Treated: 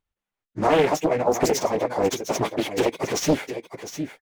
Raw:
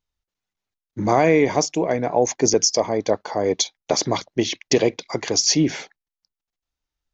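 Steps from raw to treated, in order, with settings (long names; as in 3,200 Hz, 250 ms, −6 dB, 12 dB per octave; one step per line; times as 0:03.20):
running median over 9 samples
low-shelf EQ 390 Hz −4 dB
in parallel at −1 dB: brickwall limiter −14.5 dBFS, peak gain reduction 8 dB
on the sum: time stretch by phase vocoder 0.59×
on a send: single-tap delay 707 ms −10.5 dB
on the sum: highs frequency-modulated by the lows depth 0.92 ms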